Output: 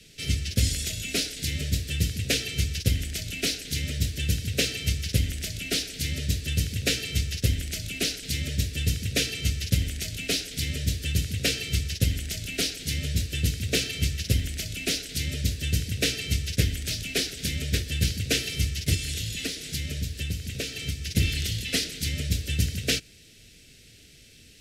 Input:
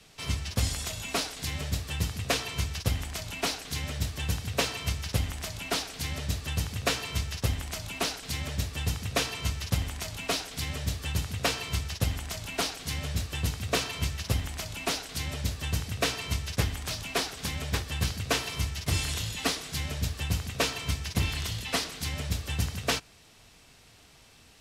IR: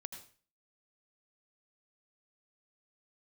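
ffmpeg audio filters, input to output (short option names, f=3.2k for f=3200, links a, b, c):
-filter_complex "[0:a]asettb=1/sr,asplit=3[a][b][c];[a]atrim=end=18.944[d];[b]atrim=start=18.94:end=21.11,asetpts=PTS-STARTPTS,afade=t=in:d=0.004:c=qsin,afade=t=out:st=2.166:d=0.004:c=qsin,acompressor=threshold=-31dB:ratio=6[e];[c]atrim=start=21.106[f];[d][e]acrossfade=d=0.004:c1=hsin:c2=qsin[g];[g][f]acrossfade=d=0.004:c1=qsin:c2=hsin,asuperstop=centerf=960:order=4:qfactor=0.64,volume=4.5dB"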